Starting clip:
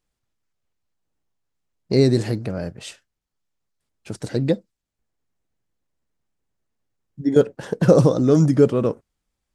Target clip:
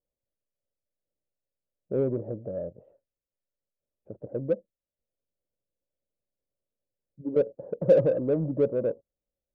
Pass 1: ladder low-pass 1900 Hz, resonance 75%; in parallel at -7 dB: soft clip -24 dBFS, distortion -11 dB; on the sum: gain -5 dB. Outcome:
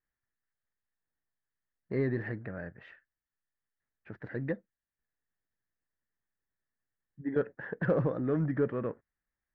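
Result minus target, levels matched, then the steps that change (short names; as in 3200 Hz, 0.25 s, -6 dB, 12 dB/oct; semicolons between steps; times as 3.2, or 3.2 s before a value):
2000 Hz band +16.5 dB
change: ladder low-pass 600 Hz, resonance 75%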